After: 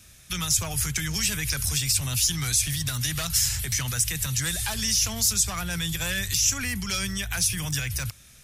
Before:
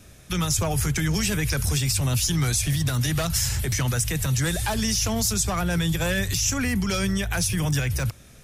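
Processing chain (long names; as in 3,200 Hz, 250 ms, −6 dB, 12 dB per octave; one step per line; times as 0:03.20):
guitar amp tone stack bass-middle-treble 5-5-5
level +8.5 dB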